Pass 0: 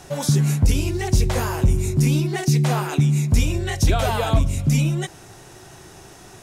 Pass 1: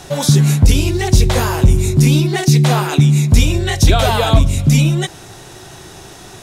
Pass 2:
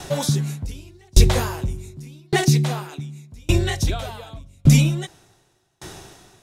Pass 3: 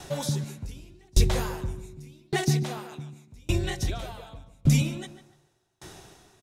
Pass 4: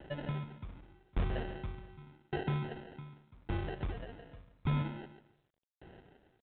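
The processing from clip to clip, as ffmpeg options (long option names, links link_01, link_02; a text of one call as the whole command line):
ffmpeg -i in.wav -af "equalizer=frequency=3700:width_type=o:width=0.48:gain=5.5,volume=7dB" out.wav
ffmpeg -i in.wav -af "aeval=exprs='val(0)*pow(10,-38*if(lt(mod(0.86*n/s,1),2*abs(0.86)/1000),1-mod(0.86*n/s,1)/(2*abs(0.86)/1000),(mod(0.86*n/s,1)-2*abs(0.86)/1000)/(1-2*abs(0.86)/1000))/20)':channel_layout=same,volume=1dB" out.wav
ffmpeg -i in.wav -filter_complex "[0:a]asplit=2[link_01][link_02];[link_02]adelay=146,lowpass=frequency=2200:poles=1,volume=-10.5dB,asplit=2[link_03][link_04];[link_04]adelay=146,lowpass=frequency=2200:poles=1,volume=0.29,asplit=2[link_05][link_06];[link_06]adelay=146,lowpass=frequency=2200:poles=1,volume=0.29[link_07];[link_01][link_03][link_05][link_07]amix=inputs=4:normalize=0,volume=-7.5dB" out.wav
ffmpeg -i in.wav -af "acrusher=samples=38:mix=1:aa=0.000001,asoftclip=type=tanh:threshold=-17dB,volume=-8.5dB" -ar 8000 -c:a adpcm_g726 -b:a 40k out.wav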